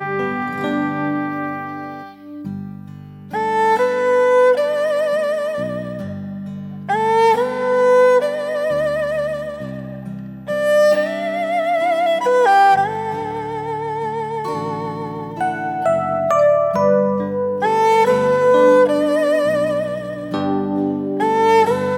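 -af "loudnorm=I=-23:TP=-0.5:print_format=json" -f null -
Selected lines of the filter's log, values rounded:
"input_i" : "-17.5",
"input_tp" : "-2.5",
"input_lra" : "6.5",
"input_thresh" : "-28.0",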